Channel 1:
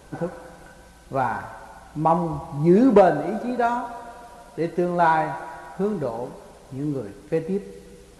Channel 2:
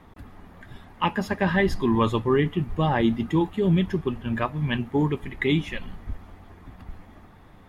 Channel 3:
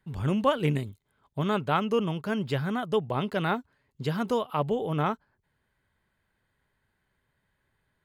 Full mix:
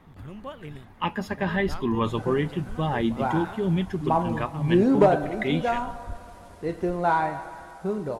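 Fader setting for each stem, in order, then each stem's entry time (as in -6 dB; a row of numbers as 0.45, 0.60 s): -4.0, -3.5, -14.5 dB; 2.05, 0.00, 0.00 s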